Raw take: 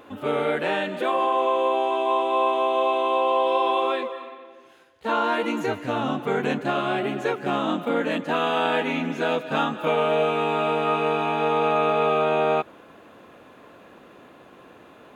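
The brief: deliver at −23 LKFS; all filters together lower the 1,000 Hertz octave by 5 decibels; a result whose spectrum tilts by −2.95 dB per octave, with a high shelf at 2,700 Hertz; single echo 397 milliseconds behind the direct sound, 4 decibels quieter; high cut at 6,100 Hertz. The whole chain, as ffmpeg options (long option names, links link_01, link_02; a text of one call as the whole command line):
ffmpeg -i in.wav -af "lowpass=6100,equalizer=frequency=1000:width_type=o:gain=-7,highshelf=frequency=2700:gain=3.5,aecho=1:1:397:0.631,volume=1.5dB" out.wav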